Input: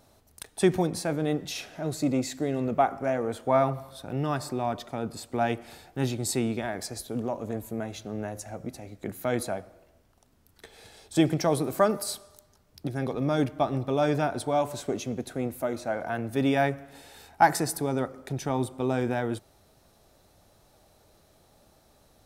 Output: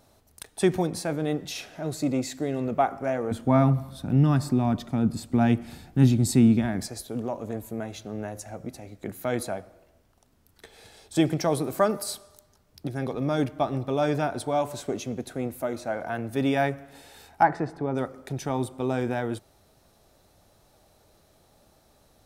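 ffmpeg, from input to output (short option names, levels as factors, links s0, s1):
-filter_complex "[0:a]asettb=1/sr,asplit=3[s0][s1][s2];[s0]atrim=end=3.314[s3];[s1]atrim=start=3.31:end=6.88,asetpts=PTS-STARTPTS,afade=t=in:d=0.004:c=qsin,afade=t=out:st=3.566:d=0.004:c=qsin,lowshelf=f=330:t=q:w=1.5:g=10[s4];[s2]atrim=start=6.876[s5];[s3][s4]acrossfade=d=0.004:c1=hsin:c2=qsin[s6];[s6][s5]acrossfade=d=0.004:c1=qsin:c2=hsin,asplit=3[s7][s8][s9];[s7]afade=t=out:st=17.42:d=0.02[s10];[s8]lowpass=1800,afade=t=in:st=17.42:d=0.02,afade=t=out:st=17.94:d=0.02[s11];[s9]afade=t=in:st=17.94:d=0.02[s12];[s10][s11][s12]amix=inputs=3:normalize=0"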